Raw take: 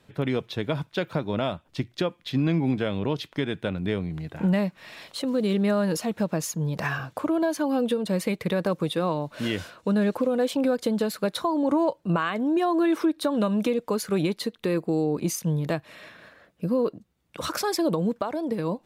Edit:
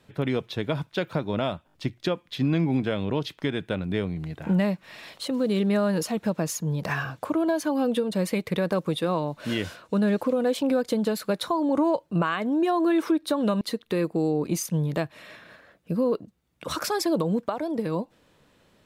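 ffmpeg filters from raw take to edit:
-filter_complex "[0:a]asplit=5[a][b][c][d][e];[a]atrim=end=1.692[f];[b]atrim=start=1.668:end=1.692[g];[c]atrim=start=1.668:end=1.692[h];[d]atrim=start=1.668:end=13.552[i];[e]atrim=start=14.338[j];[f][g]acrossfade=d=0.004:c1=hsin:c2=hsin[k];[k][h]acrossfade=d=0.004:c1=hsin:c2=hsin[l];[l][i]acrossfade=d=0.004:c1=hsin:c2=hsin[m];[m][j]acrossfade=d=0.004:c1=hsin:c2=hsin"

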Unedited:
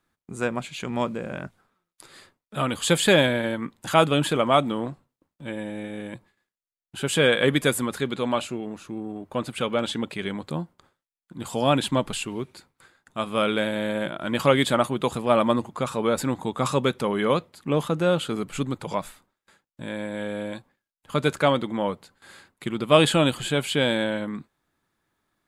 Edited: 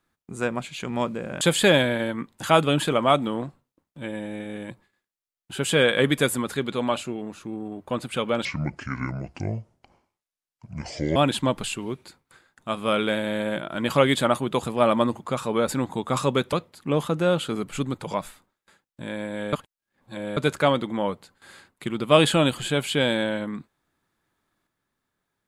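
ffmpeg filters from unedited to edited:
-filter_complex "[0:a]asplit=7[a][b][c][d][e][f][g];[a]atrim=end=1.412[h];[b]atrim=start=2.848:end=9.894[i];[c]atrim=start=9.89:end=11.65,asetpts=PTS-STARTPTS,asetrate=28665,aresample=44100,atrim=end_sample=119409,asetpts=PTS-STARTPTS[j];[d]atrim=start=11.646:end=17.022[k];[e]atrim=start=17.328:end=20.332[l];[f]atrim=start=20.328:end=21.172,asetpts=PTS-STARTPTS,areverse[m];[g]atrim=start=21.168[n];[h][i]acrossfade=d=0.004:c1=hsin:c2=hsin[o];[o][j]acrossfade=d=0.004:c1=hsin:c2=hsin[p];[p][k]acrossfade=d=0.004:c1=hsin:c2=hsin[q];[q][l]acrossfade=d=0.004:c1=hsin:c2=hsin[r];[r][m]acrossfade=d=0.004:c1=hsin:c2=hsin[s];[s][n]acrossfade=d=0.004:c1=hsin:c2=hsin"

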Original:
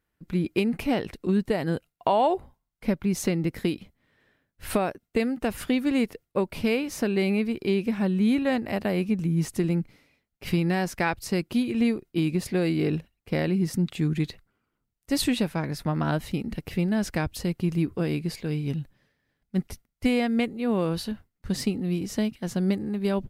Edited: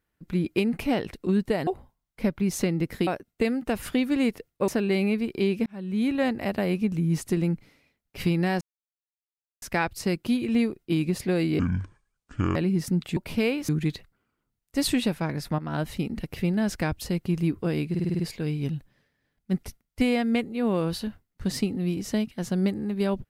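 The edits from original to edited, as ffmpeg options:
-filter_complex "[0:a]asplit=17[a][b][c][d][e][f][g][h][i][j][k][l][m][n][o][p][q];[a]atrim=end=1.672[r];[b]atrim=start=2.308:end=3.712[s];[c]atrim=start=4.818:end=6.432[t];[d]atrim=start=6.948:end=7.93,asetpts=PTS-STARTPTS,afade=t=out:st=0.978:d=0.004:c=hsin[u];[e]atrim=start=7.93:end=10.88,asetpts=PTS-STARTPTS,afade=t=in:d=0.51,afade=t=out:st=2.946:d=0.004:c=hsin,apad=pad_dur=1.01[v];[f]atrim=start=10.88:end=12.854,asetpts=PTS-STARTPTS,afade=t=in:d=0.004:c=hsin[w];[g]atrim=start=12.85:end=13.42,asetpts=PTS-STARTPTS,asetrate=26019,aresample=44100,atrim=end_sample=42605,asetpts=PTS-STARTPTS[x];[h]atrim=start=13.416:end=14.032[y];[i]atrim=start=6.428:end=6.952[z];[j]atrim=start=14.028:end=15.93,asetpts=PTS-STARTPTS,afade=t=out:st=1.898:d=0.004:c=hsin:silence=0.223872[aa];[k]atrim=start=15.93:end=18.292,asetpts=PTS-STARTPTS,afade=t=in:d=0.29:silence=0.223872[ab];[l]atrim=start=18.238:end=18.292[ac];[m]atrim=start=18.238:end=18.292[ad];[n]atrim=start=18.238:end=18.292[ae];[o]atrim=start=18.238:end=18.292[af];[p]atrim=start=18.238:end=18.292[ag];[q]atrim=start=18.238[ah];[r][s]acrossfade=d=0.004:c1=hsin:c2=hsin[ai];[ai][t]acrossfade=d=0.004:c1=hsin:c2=hsin[aj];[u][v][w]concat=n=3:v=0:a=1[ak];[aj][ak]acrossfade=d=0.004:c1=hsin:c2=hsin[al];[al][x]acrossfade=d=0.004:c1=hsin:c2=hsin[am];[am][y]acrossfade=d=0.004:c1=hsin:c2=hsin[an];[an][z]acrossfade=d=0.004:c1=hsin:c2=hsin[ao];[aa][ab]concat=n=2:v=0:a=1[ap];[ao][ap]acrossfade=d=0.004:c1=hsin:c2=hsin[aq];[aq][ac]acrossfade=d=0.004:c1=hsin:c2=hsin[ar];[ar][ad]acrossfade=d=0.004:c1=hsin:c2=hsin[as];[as][ae]acrossfade=d=0.004:c1=hsin:c2=hsin[at];[at][af]acrossfade=d=0.004:c1=hsin:c2=hsin[au];[au][ag]acrossfade=d=0.004:c1=hsin:c2=hsin[av];[av][ah]acrossfade=d=0.004:c1=hsin:c2=hsin"

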